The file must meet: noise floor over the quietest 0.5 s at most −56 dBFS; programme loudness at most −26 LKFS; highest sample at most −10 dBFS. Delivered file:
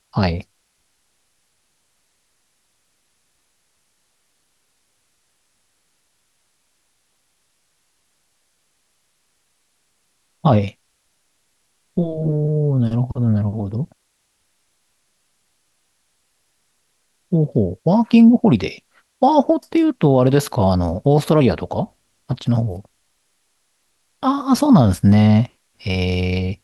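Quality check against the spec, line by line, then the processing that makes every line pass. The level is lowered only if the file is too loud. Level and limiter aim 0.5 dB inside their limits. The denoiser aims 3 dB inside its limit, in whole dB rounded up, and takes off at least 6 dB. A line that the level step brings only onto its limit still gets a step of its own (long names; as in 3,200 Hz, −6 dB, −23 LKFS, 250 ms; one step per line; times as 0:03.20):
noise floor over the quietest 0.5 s −67 dBFS: in spec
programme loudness −17.5 LKFS: out of spec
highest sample −3.5 dBFS: out of spec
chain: level −9 dB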